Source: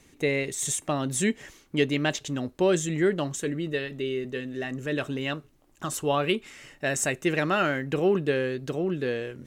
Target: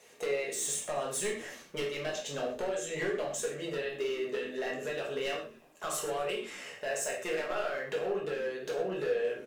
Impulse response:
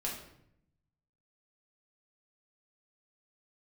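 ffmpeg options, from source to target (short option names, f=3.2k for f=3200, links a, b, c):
-filter_complex "[0:a]highpass=150,lowshelf=f=370:t=q:w=3:g=-9.5,acompressor=threshold=-31dB:ratio=20,asoftclip=type=hard:threshold=-31dB,asplit=4[a][b][c][d];[b]adelay=124,afreqshift=-87,volume=-20.5dB[e];[c]adelay=248,afreqshift=-174,volume=-27.6dB[f];[d]adelay=372,afreqshift=-261,volume=-34.8dB[g];[a][e][f][g]amix=inputs=4:normalize=0[h];[1:a]atrim=start_sample=2205,atrim=end_sample=6174[i];[h][i]afir=irnorm=-1:irlink=0,volume=1dB"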